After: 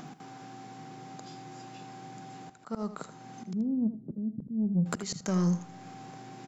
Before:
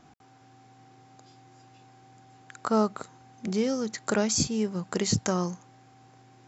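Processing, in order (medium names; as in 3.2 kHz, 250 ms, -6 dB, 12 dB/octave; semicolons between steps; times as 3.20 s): 3.53–4.86 s: inverse Chebyshev low-pass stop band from 1.8 kHz, stop band 80 dB; resonant low shelf 110 Hz -13 dB, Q 3; slow attack 692 ms; in parallel at +1 dB: upward compressor, threshold -44 dBFS; on the sum: saturation -18.5 dBFS, distortion -18 dB; delay 80 ms -12 dB; on a send at -23 dB: reverberation RT60 1.6 s, pre-delay 10 ms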